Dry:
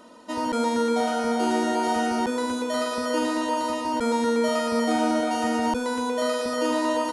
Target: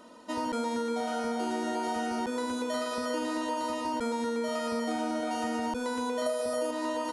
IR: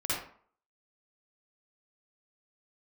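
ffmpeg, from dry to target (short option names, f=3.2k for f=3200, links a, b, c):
-filter_complex "[0:a]asettb=1/sr,asplit=3[a][b][c];[a]atrim=end=6.264[d];[b]atrim=start=6.26:end=6.71,asetpts=PTS-STARTPTS,afade=t=in:d=0.004:c=qsin,afade=t=out:st=0.446:d=0.004:c=qsin,equalizer=f=100:t=o:w=0.67:g=9,equalizer=f=630:t=o:w=0.67:g=11,equalizer=f=10k:t=o:w=0.67:g=12[e];[c]atrim=start=6.706[f];[d][e]acrossfade=d=0.004:c1=hsin:c2=qsin[g];[g][f]acrossfade=d=0.004:c1=qsin:c2=hsin,acompressor=threshold=-25dB:ratio=6,volume=-3dB"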